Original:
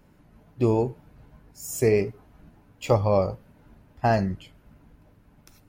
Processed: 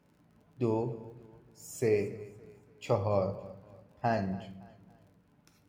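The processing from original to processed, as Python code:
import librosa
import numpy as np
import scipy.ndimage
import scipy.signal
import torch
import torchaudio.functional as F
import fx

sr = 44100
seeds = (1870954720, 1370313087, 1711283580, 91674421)

p1 = scipy.signal.sosfilt(scipy.signal.butter(2, 91.0, 'highpass', fs=sr, output='sos'), x)
p2 = fx.high_shelf(p1, sr, hz=9100.0, db=-8.5)
p3 = fx.dmg_crackle(p2, sr, seeds[0], per_s=31.0, level_db=-49.0)
p4 = p3 + fx.echo_feedback(p3, sr, ms=282, feedback_pct=39, wet_db=-20, dry=0)
p5 = fx.room_shoebox(p4, sr, seeds[1], volume_m3=160.0, walls='mixed', distance_m=0.35)
y = p5 * librosa.db_to_amplitude(-8.0)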